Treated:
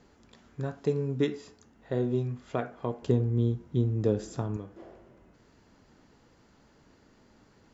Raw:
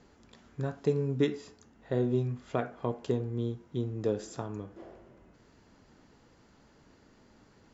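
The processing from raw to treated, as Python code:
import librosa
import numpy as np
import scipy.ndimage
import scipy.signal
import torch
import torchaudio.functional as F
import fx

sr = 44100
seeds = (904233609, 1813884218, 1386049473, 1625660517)

y = fx.low_shelf(x, sr, hz=250.0, db=10.5, at=(3.02, 4.57))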